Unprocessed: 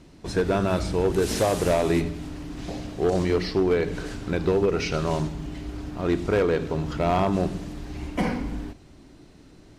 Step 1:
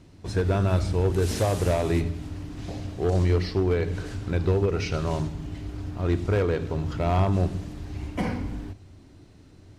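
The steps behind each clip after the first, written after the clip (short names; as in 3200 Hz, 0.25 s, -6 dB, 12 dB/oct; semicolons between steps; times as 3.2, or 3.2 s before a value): bell 93 Hz +14 dB 0.52 oct; gain -3.5 dB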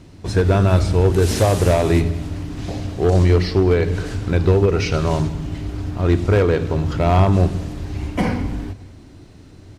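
feedback echo 0.205 s, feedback 46%, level -21.5 dB; gain +8 dB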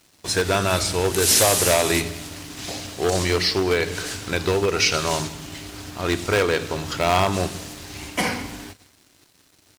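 tilt +4 dB/oct; crossover distortion -47 dBFS; gain +1 dB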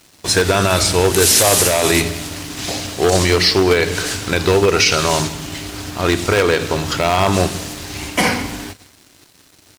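maximiser +9 dB; gain -1 dB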